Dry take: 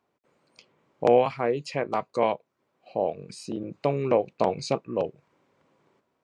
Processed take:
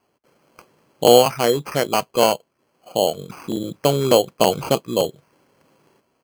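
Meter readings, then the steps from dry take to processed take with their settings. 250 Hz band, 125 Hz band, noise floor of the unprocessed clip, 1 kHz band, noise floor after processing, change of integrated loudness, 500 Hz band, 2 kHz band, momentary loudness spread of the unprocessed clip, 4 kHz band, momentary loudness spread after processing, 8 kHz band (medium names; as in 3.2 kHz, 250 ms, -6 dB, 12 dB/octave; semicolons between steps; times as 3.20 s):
+7.5 dB, +7.5 dB, -76 dBFS, +7.0 dB, -69 dBFS, +8.0 dB, +7.0 dB, +8.0 dB, 13 LU, +18.5 dB, 14 LU, +19.5 dB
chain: resampled via 11.025 kHz; sample-and-hold 12×; trim +7.5 dB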